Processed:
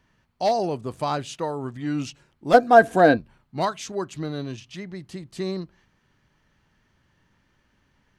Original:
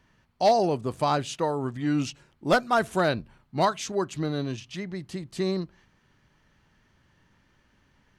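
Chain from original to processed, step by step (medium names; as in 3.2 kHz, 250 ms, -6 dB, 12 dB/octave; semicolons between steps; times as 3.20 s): 2.53–3.16 s: small resonant body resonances 290/480/690/1600 Hz, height 15 dB -> 17 dB; trim -1.5 dB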